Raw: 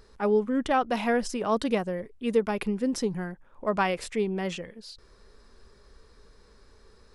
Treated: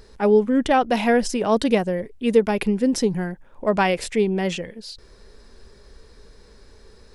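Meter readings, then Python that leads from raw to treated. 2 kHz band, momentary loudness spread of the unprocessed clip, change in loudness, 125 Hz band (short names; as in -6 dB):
+6.0 dB, 11 LU, +7.0 dB, +7.5 dB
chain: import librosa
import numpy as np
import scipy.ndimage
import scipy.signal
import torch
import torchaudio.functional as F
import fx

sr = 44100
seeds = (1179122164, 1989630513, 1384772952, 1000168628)

y = fx.peak_eq(x, sr, hz=1200.0, db=-6.5, octaves=0.54)
y = F.gain(torch.from_numpy(y), 7.5).numpy()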